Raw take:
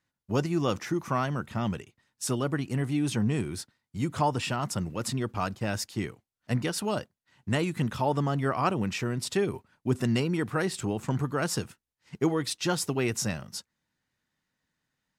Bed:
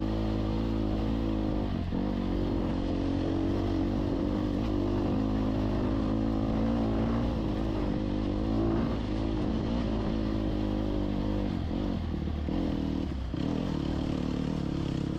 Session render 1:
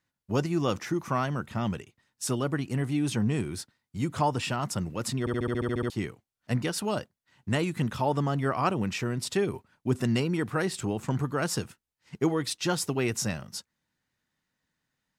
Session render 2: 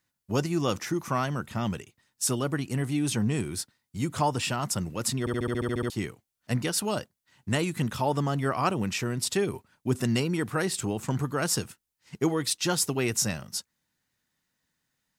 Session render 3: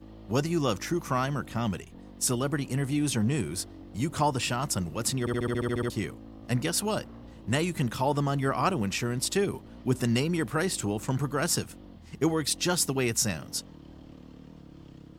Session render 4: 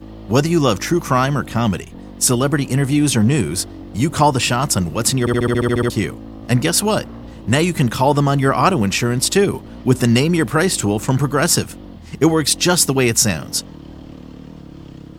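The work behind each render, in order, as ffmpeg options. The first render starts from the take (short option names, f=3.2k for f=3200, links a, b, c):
-filter_complex "[0:a]asplit=11[a][b][c][d][e][f][g][h][i][j][k];[a]atrim=end=5.272[l];[b]atrim=start=5.198:end=5.272[m];[c]atrim=start=5.198:end=5.272[n];[d]atrim=start=5.198:end=5.272[o];[e]atrim=start=5.198:end=5.272[p];[f]atrim=start=5.198:end=5.272[q];[g]atrim=start=5.198:end=5.272[r];[h]atrim=start=5.198:end=5.272[s];[i]atrim=start=5.198:end=5.272[t];[j]atrim=start=5.198:end=5.272[u];[k]atrim=start=5.898[v];[l][m]acrossfade=d=0.004:c1=hsin:c2=hsin[w];[w][n]acrossfade=d=0.004:c1=hsin:c2=hsin[x];[x][o]acrossfade=d=0.004:c1=hsin:c2=hsin[y];[y][p]acrossfade=d=0.004:c1=hsin:c2=hsin[z];[z][q]acrossfade=d=0.004:c1=hsin:c2=hsin[aa];[aa][r]acrossfade=d=0.004:c1=hsin:c2=hsin[ab];[ab][s]acrossfade=d=0.004:c1=hsin:c2=hsin[ac];[ac][t]acrossfade=d=0.004:c1=hsin:c2=hsin[ad];[ad][u]acrossfade=d=0.004:c1=hsin:c2=hsin[ae];[ae][v]acrossfade=d=0.004:c1=hsin:c2=hsin"
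-af "highshelf=f=5.1k:g=8.5"
-filter_complex "[1:a]volume=-17.5dB[a];[0:a][a]amix=inputs=2:normalize=0"
-af "volume=12dB,alimiter=limit=-1dB:level=0:latency=1"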